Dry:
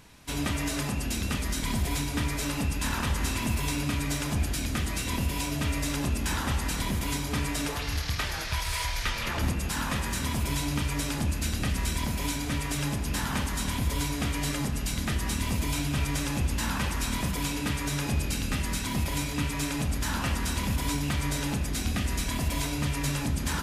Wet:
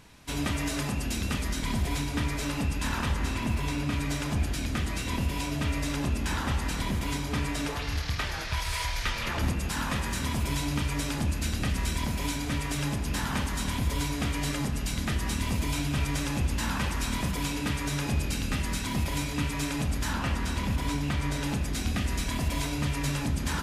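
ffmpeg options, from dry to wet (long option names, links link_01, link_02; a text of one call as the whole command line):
ffmpeg -i in.wav -af "asetnsamples=nb_out_samples=441:pad=0,asendcmd='1.49 lowpass f 5600;3.14 lowpass f 3000;3.92 lowpass f 5000;8.57 lowpass f 8400;20.13 lowpass f 3700;21.43 lowpass f 7500',lowpass=frequency=9600:poles=1" out.wav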